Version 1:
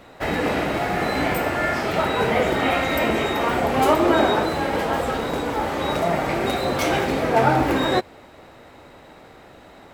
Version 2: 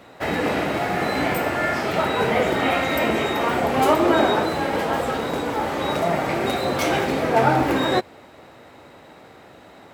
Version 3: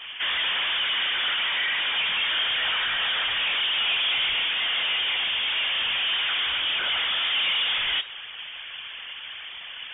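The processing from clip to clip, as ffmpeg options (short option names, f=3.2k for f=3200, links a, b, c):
-af "highpass=81"
-filter_complex "[0:a]afftfilt=real='hypot(re,im)*cos(2*PI*random(0))':imag='hypot(re,im)*sin(2*PI*random(1))':win_size=512:overlap=0.75,asplit=2[a][b];[b]highpass=f=720:p=1,volume=31dB,asoftclip=type=tanh:threshold=-11.5dB[c];[a][c]amix=inputs=2:normalize=0,lowpass=f=2.9k:p=1,volume=-6dB,lowpass=f=3.1k:t=q:w=0.5098,lowpass=f=3.1k:t=q:w=0.6013,lowpass=f=3.1k:t=q:w=0.9,lowpass=f=3.1k:t=q:w=2.563,afreqshift=-3700,volume=-6.5dB"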